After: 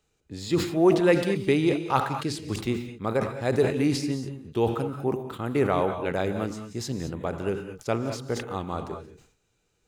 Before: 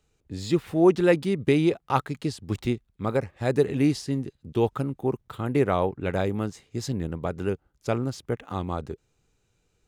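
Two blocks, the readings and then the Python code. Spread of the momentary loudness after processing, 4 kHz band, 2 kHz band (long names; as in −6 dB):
11 LU, +2.5 dB, +1.5 dB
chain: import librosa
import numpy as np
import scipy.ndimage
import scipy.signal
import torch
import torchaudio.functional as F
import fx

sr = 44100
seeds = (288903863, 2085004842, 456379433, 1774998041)

y = fx.low_shelf(x, sr, hz=190.0, db=-6.5)
y = fx.rev_gated(y, sr, seeds[0], gate_ms=240, shape='rising', drr_db=8.0)
y = fx.sustainer(y, sr, db_per_s=100.0)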